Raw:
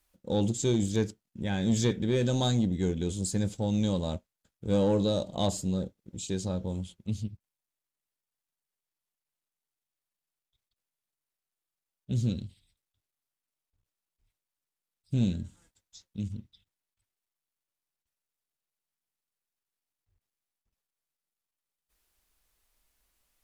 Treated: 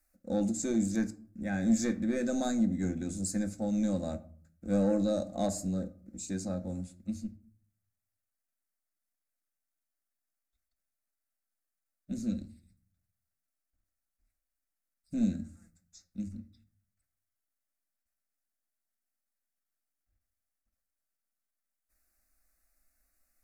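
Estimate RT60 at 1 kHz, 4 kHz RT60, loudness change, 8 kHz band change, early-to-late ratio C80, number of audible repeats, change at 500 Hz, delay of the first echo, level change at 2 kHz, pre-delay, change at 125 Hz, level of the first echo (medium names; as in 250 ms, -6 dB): 0.50 s, 0.30 s, -2.5 dB, -1.5 dB, 22.0 dB, no echo, -4.0 dB, no echo, -1.0 dB, 4 ms, -9.0 dB, no echo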